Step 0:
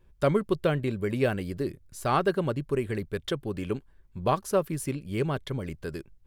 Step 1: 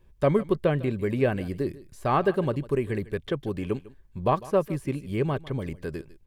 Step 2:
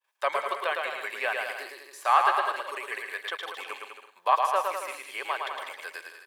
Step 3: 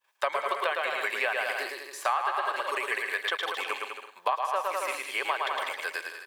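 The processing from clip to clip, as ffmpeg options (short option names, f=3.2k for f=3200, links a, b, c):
-filter_complex "[0:a]aecho=1:1:151:0.106,acrossover=split=2800[a][b];[b]acompressor=threshold=-52dB:ratio=4:attack=1:release=60[c];[a][c]amix=inputs=2:normalize=0,bandreject=f=1.4k:w=8.4,volume=2dB"
-af "agate=range=-33dB:threshold=-50dB:ratio=3:detection=peak,highpass=f=830:w=0.5412,highpass=f=830:w=1.3066,aecho=1:1:110|198|268.4|324.7|369.8:0.631|0.398|0.251|0.158|0.1,volume=5.5dB"
-af "equalizer=f=11k:t=o:w=0.54:g=-3,acompressor=threshold=-30dB:ratio=10,volume=6dB"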